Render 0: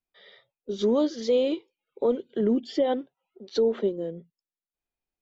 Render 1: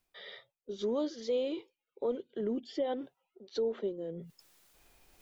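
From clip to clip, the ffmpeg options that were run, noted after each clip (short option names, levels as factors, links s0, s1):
-af "equalizer=f=210:w=1.7:g=-3.5,areverse,acompressor=mode=upward:threshold=0.0501:ratio=2.5,areverse,volume=0.376"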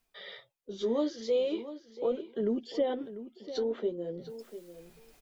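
-filter_complex "[0:a]flanger=delay=4.4:depth=9.8:regen=-30:speed=0.42:shape=sinusoidal,asplit=2[s0][s1];[s1]adelay=695,lowpass=f=4500:p=1,volume=0.224,asplit=2[s2][s3];[s3]adelay=695,lowpass=f=4500:p=1,volume=0.15[s4];[s0][s2][s4]amix=inputs=3:normalize=0,volume=2"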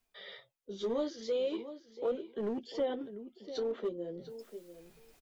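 -filter_complex "[0:a]asplit=2[s0][s1];[s1]adelay=15,volume=0.251[s2];[s0][s2]amix=inputs=2:normalize=0,acrossover=split=440|3400[s3][s4][s5];[s3]asoftclip=type=hard:threshold=0.0237[s6];[s6][s4][s5]amix=inputs=3:normalize=0,volume=0.708"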